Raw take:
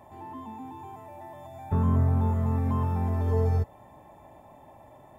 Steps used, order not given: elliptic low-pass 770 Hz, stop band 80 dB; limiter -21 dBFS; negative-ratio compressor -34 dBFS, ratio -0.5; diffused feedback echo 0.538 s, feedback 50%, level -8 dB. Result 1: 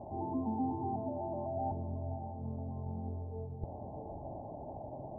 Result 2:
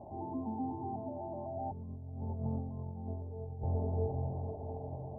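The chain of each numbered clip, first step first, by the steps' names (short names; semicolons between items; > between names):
elliptic low-pass > limiter > negative-ratio compressor > diffused feedback echo; limiter > diffused feedback echo > negative-ratio compressor > elliptic low-pass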